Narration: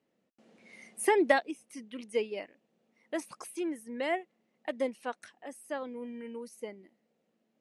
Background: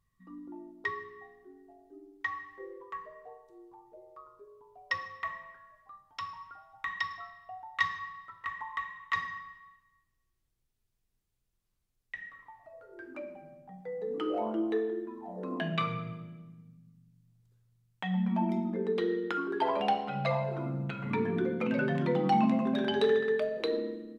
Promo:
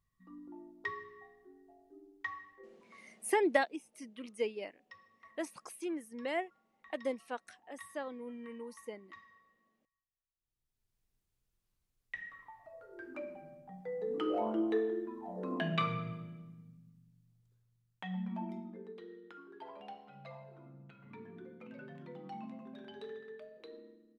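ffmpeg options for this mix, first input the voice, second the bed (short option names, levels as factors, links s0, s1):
-filter_complex "[0:a]adelay=2250,volume=0.631[s0];[1:a]volume=6.68,afade=t=out:st=2.18:d=0.8:silence=0.125893,afade=t=in:st=10.35:d=0.67:silence=0.0841395,afade=t=out:st=16.7:d=2.3:silence=0.112202[s1];[s0][s1]amix=inputs=2:normalize=0"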